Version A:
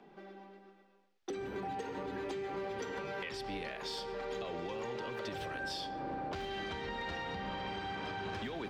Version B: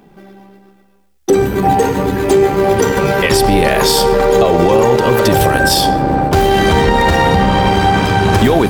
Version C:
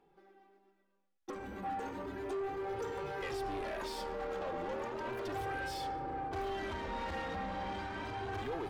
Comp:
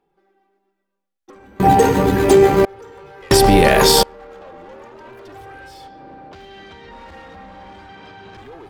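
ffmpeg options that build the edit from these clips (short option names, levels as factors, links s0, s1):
-filter_complex "[1:a]asplit=2[s0][s1];[0:a]asplit=2[s2][s3];[2:a]asplit=5[s4][s5][s6][s7][s8];[s4]atrim=end=1.602[s9];[s0]atrim=start=1.598:end=2.652[s10];[s5]atrim=start=2.648:end=3.312[s11];[s1]atrim=start=3.308:end=4.032[s12];[s6]atrim=start=4.028:end=5.882[s13];[s2]atrim=start=5.878:end=6.912[s14];[s7]atrim=start=6.908:end=7.892[s15];[s3]atrim=start=7.888:end=8.372[s16];[s8]atrim=start=8.368[s17];[s9][s10]acrossfade=d=0.004:c1=hsin:c2=hsin[s18];[s18][s11]acrossfade=d=0.004:c1=hsin:c2=hsin[s19];[s19][s12]acrossfade=d=0.004:c1=hsin:c2=hsin[s20];[s20][s13]acrossfade=d=0.004:c1=hsin:c2=hsin[s21];[s21][s14]acrossfade=d=0.004:c1=hsin:c2=hsin[s22];[s22][s15]acrossfade=d=0.004:c1=hsin:c2=hsin[s23];[s23][s16]acrossfade=d=0.004:c1=hsin:c2=hsin[s24];[s24][s17]acrossfade=d=0.004:c1=hsin:c2=hsin"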